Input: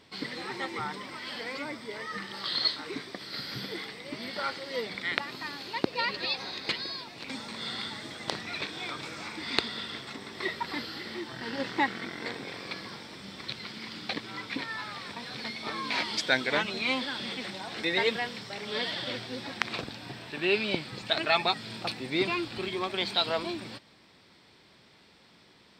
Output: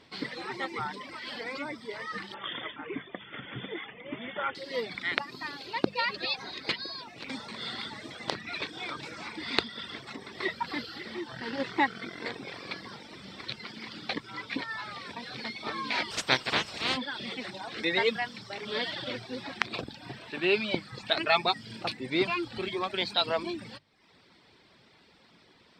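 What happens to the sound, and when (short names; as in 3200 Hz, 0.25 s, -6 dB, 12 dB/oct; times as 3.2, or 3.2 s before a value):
2.34–4.55 brick-wall FIR low-pass 3600 Hz
16.1–16.96 spectral limiter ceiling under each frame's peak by 22 dB
whole clip: reverb removal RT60 0.78 s; high shelf 7900 Hz -10 dB; notches 50/100/150/200 Hz; gain +1.5 dB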